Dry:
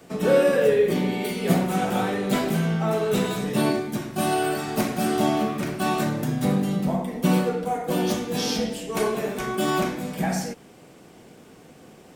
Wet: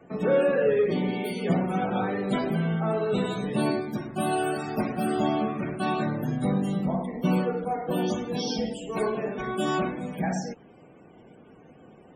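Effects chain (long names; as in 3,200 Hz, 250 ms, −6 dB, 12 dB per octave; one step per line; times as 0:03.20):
in parallel at −5 dB: gain into a clipping stage and back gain 18 dB
on the sum: spectral peaks only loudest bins 64
level −6.5 dB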